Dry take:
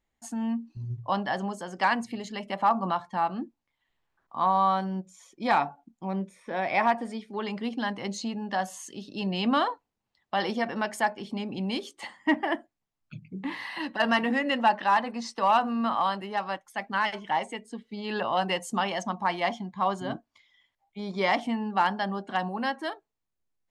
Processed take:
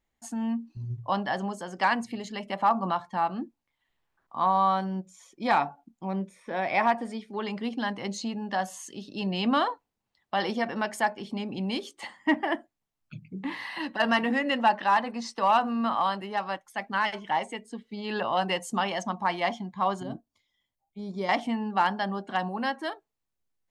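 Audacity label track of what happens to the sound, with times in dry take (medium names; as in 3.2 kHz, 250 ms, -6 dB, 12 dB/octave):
20.030000	21.290000	peaking EQ 1.9 kHz -14.5 dB 2.8 oct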